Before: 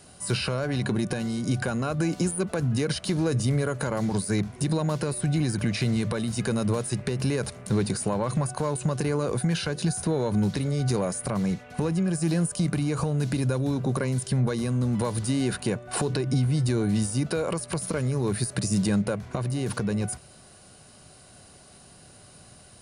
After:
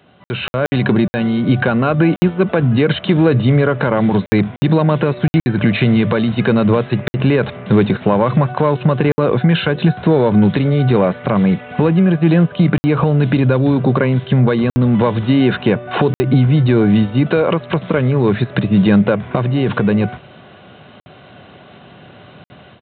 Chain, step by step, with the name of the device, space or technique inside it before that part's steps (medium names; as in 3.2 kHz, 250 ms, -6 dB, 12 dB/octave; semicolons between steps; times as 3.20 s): call with lost packets (high-pass 120 Hz 12 dB/octave; resampled via 8 kHz; level rider gain up to 11 dB; lost packets of 60 ms random); trim +3 dB